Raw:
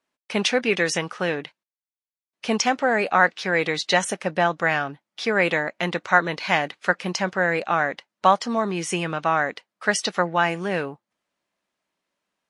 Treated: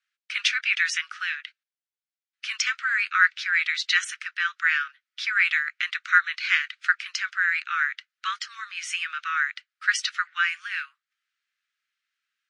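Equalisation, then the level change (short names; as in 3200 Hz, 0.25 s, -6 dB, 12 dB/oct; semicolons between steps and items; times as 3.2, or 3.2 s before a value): steep high-pass 1300 Hz 72 dB/oct; air absorption 76 m; dynamic EQ 2300 Hz, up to +3 dB, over -40 dBFS, Q 6.9; +2.0 dB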